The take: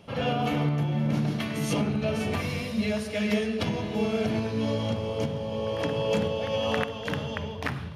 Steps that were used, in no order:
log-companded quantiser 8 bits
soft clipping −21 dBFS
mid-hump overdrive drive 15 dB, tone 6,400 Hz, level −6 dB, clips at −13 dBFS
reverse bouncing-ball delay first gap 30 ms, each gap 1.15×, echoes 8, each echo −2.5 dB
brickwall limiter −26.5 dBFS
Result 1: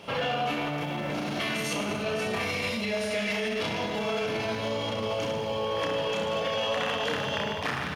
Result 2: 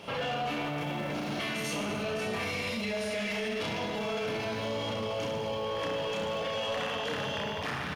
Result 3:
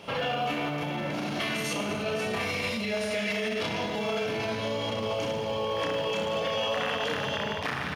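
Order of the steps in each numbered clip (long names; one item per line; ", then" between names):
log-companded quantiser, then soft clipping, then reverse bouncing-ball delay, then brickwall limiter, then mid-hump overdrive
soft clipping, then log-companded quantiser, then reverse bouncing-ball delay, then mid-hump overdrive, then brickwall limiter
reverse bouncing-ball delay, then brickwall limiter, then soft clipping, then mid-hump overdrive, then log-companded quantiser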